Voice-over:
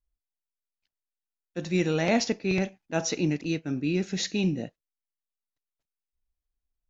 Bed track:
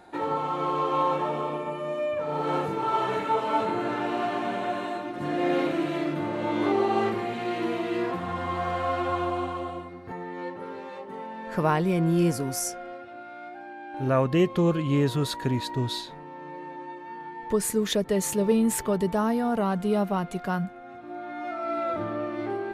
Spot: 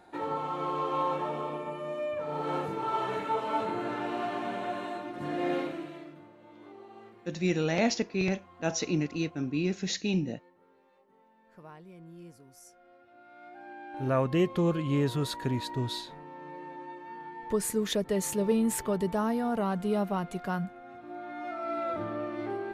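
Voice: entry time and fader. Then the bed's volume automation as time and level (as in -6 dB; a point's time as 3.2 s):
5.70 s, -2.5 dB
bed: 5.53 s -5 dB
6.37 s -26 dB
12.53 s -26 dB
13.72 s -4 dB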